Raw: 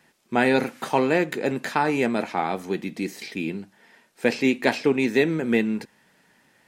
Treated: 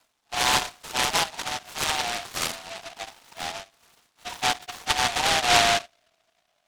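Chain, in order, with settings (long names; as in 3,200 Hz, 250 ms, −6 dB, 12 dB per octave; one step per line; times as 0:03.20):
harmonic-percussive split with one part muted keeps harmonic
low-pass filter 2,600 Hz
dynamic equaliser 1,200 Hz, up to −6 dB, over −41 dBFS, Q 0.86
0:04.34–0:05.36: high-pass filter 150 Hz 24 dB per octave
frequency shifter +480 Hz
band-pass filter sweep 1,200 Hz → 450 Hz, 0:04.84–0:06.23
short delay modulated by noise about 2,300 Hz, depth 0.22 ms
level +5 dB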